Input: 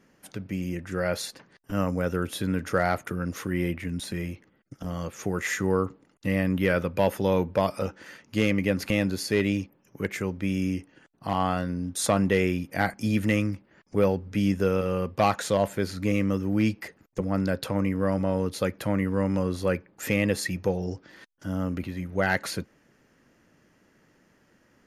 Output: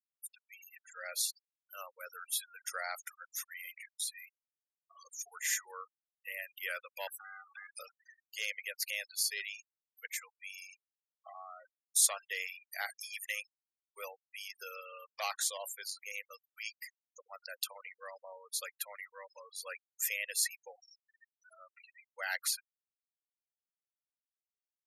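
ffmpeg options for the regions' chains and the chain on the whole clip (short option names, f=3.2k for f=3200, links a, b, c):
-filter_complex "[0:a]asettb=1/sr,asplit=3[a][b][c];[a]atrim=end=7.074[d];[b]atrim=start=7.07:end=7.77,asetpts=PTS-STARTPTS,afade=t=in:d=0.004:c=qsin,afade=t=out:st=0.696:d=0.004:c=qsin,afreqshift=41,acompressor=threshold=-34dB:ratio=2.5:attack=3.2:release=140:knee=1:detection=peak,aeval=exprs='val(0)*sin(2*PI*1000*n/s)':c=same[e];[c]atrim=start=7.766[f];[d][e]acrossfade=d=0.004:c1=hsin:c2=qsin[g];[g][f]acrossfade=d=0.004:c1=qsin:c2=hsin,asettb=1/sr,asplit=3[h][i][j];[h]atrim=end=10.744[k];[i]atrim=start=10.74:end=11.65,asetpts=PTS-STARTPTS,afade=t=in:d=0.004:c=qsin,afade=t=out:st=0.906:d=0.004:c=qsin,lowpass=f=2.6k:w=0.5412,lowpass=f=2.6k:w=1.3066,aecho=1:1:1.6:0.95,atrim=end_sample=40131,acompressor=threshold=-26dB:ratio=12:attack=3.2:release=140:knee=1:detection=peak[l];[j]atrim=start=11.646[m];[k][l]acrossfade=d=0.004:c1=hsin:c2=qsin[n];[n][m]acrossfade=d=0.004:c1=qsin:c2=hsin,highpass=f=550:w=0.5412,highpass=f=550:w=1.3066,aderivative,afftfilt=real='re*gte(hypot(re,im),0.00631)':imag='im*gte(hypot(re,im),0.00631)':win_size=1024:overlap=0.75,volume=3dB"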